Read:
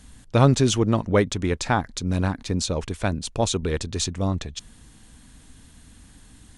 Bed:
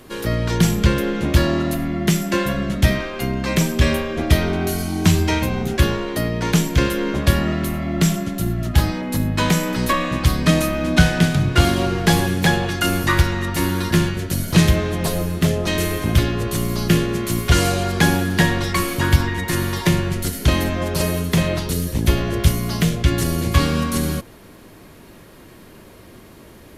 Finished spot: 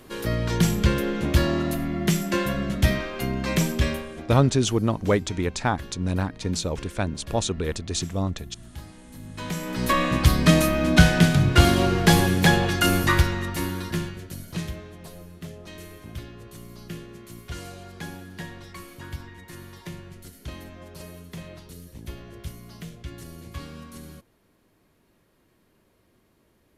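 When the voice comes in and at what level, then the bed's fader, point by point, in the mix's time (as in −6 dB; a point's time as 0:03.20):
3.95 s, −2.0 dB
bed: 0:03.71 −4.5 dB
0:04.61 −23.5 dB
0:09.12 −23.5 dB
0:09.99 −1 dB
0:12.95 −1 dB
0:14.97 −21 dB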